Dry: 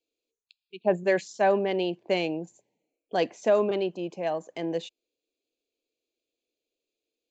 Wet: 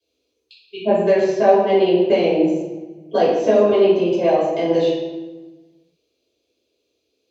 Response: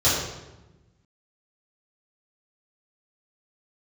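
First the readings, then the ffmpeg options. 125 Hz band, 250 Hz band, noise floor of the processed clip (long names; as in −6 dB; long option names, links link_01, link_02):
+9.0 dB, +12.5 dB, −73 dBFS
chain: -filter_complex "[0:a]acrossover=split=940|3500[link_01][link_02][link_03];[link_01]acompressor=threshold=-29dB:ratio=4[link_04];[link_02]acompressor=threshold=-44dB:ratio=4[link_05];[link_03]acompressor=threshold=-59dB:ratio=4[link_06];[link_04][link_05][link_06]amix=inputs=3:normalize=0[link_07];[1:a]atrim=start_sample=2205,asetrate=37926,aresample=44100[link_08];[link_07][link_08]afir=irnorm=-1:irlink=0,volume=-4dB"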